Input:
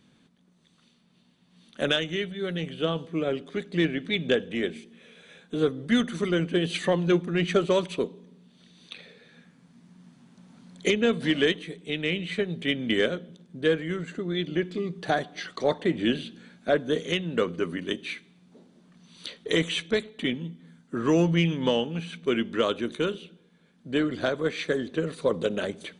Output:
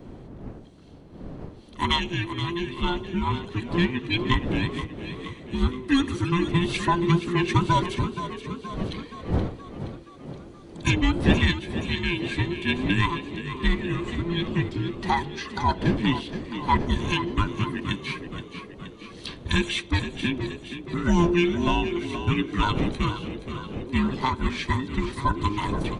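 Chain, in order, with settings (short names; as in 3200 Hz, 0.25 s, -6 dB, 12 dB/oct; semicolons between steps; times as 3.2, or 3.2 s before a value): band inversion scrambler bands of 500 Hz; wind noise 290 Hz -37 dBFS; frequency-shifting echo 0.473 s, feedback 59%, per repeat +32 Hz, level -11 dB; gain +1.5 dB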